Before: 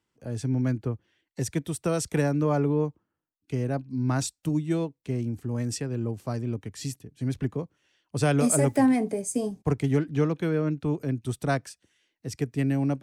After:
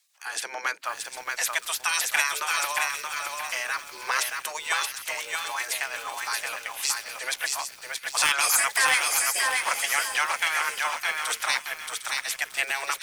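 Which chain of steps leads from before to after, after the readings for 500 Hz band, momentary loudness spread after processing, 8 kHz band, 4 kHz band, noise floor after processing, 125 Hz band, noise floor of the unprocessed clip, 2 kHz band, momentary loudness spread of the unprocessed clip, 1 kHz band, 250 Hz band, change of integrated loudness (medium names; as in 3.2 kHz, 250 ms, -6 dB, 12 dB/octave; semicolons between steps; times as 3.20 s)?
-11.5 dB, 11 LU, +9.0 dB, +15.5 dB, -46 dBFS, under -35 dB, -83 dBFS, +15.5 dB, 12 LU, +7.5 dB, -30.5 dB, +2.0 dB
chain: spectral gate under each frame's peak -20 dB weak; high-pass 1.2 kHz 12 dB/octave; treble shelf 2.6 kHz -2.5 dB; in parallel at +0.5 dB: compression 6:1, threshold -55 dBFS, peak gain reduction 19.5 dB; on the sum: sine folder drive 5 dB, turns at -21 dBFS; on a send: feedback echo behind a high-pass 754 ms, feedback 45%, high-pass 2.4 kHz, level -9.5 dB; on the sum: bit-crushed delay 626 ms, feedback 35%, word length 9-bit, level -3 dB; trim +8.5 dB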